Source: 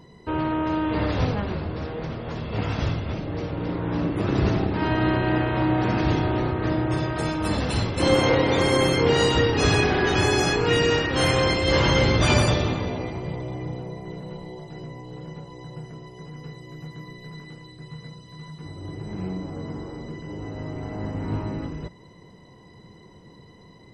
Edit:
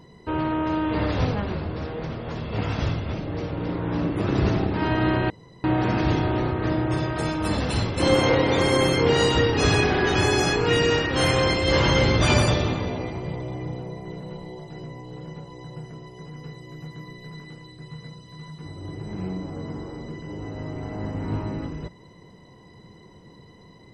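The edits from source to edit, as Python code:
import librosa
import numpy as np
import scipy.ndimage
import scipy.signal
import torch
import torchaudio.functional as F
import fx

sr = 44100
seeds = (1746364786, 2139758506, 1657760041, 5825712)

y = fx.edit(x, sr, fx.room_tone_fill(start_s=5.3, length_s=0.34), tone=tone)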